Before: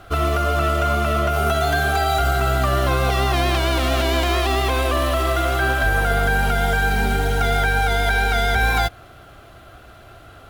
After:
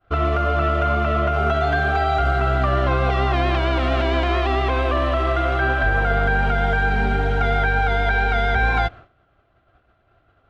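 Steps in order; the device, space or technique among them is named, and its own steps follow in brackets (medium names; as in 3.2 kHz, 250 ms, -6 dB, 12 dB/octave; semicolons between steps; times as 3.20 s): hearing-loss simulation (low-pass 2.6 kHz 12 dB/octave; expander -32 dBFS)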